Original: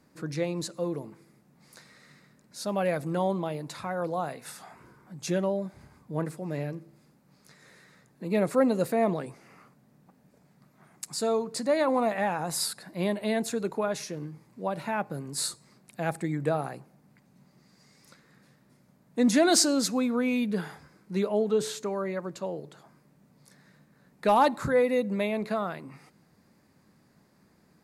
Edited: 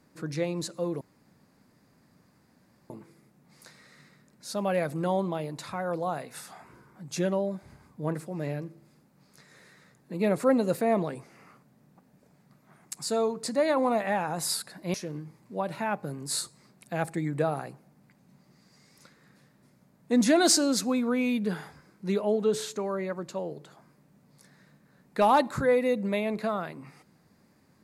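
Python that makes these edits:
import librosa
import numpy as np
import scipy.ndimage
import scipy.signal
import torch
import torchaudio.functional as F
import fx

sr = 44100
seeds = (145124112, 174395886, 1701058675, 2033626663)

y = fx.edit(x, sr, fx.insert_room_tone(at_s=1.01, length_s=1.89),
    fx.cut(start_s=13.05, length_s=0.96), tone=tone)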